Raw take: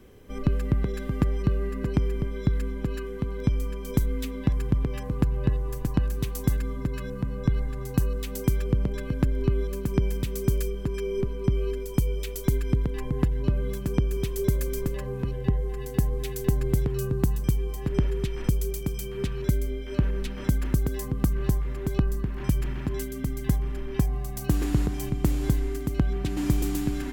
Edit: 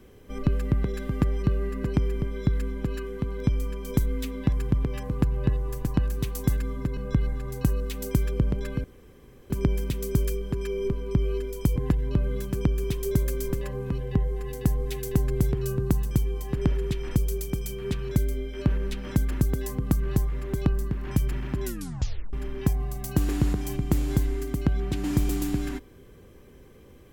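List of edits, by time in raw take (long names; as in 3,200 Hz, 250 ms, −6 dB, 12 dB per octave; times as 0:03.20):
0:06.97–0:07.30: remove
0:09.17–0:09.83: fill with room tone
0:12.09–0:13.09: remove
0:22.97: tape stop 0.69 s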